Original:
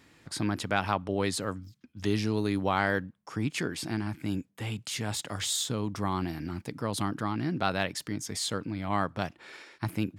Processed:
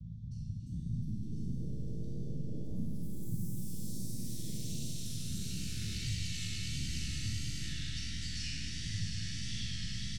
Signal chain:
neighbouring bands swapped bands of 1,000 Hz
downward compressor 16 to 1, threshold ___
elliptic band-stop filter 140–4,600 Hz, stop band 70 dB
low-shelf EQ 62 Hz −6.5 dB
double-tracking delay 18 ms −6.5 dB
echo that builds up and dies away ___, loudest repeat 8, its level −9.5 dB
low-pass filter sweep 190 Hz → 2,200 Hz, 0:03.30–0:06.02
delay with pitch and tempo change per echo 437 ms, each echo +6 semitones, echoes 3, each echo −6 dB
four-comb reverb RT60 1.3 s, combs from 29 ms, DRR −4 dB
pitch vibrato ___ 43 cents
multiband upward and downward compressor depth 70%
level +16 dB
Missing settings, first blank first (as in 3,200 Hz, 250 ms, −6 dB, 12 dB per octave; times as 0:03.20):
−42 dBFS, 101 ms, 1.5 Hz